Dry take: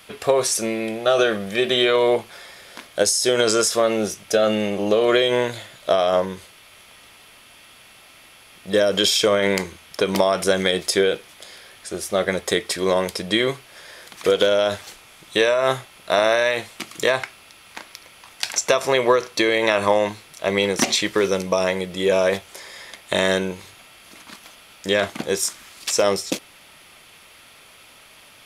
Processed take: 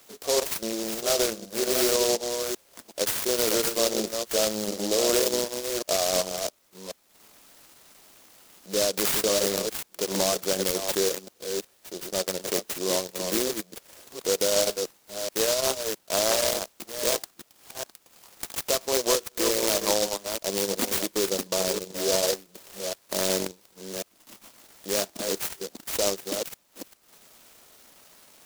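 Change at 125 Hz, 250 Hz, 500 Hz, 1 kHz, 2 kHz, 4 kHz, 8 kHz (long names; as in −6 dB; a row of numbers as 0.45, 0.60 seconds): −10.0, −7.0, −7.5, −9.0, −11.0, −4.5, +0.5 decibels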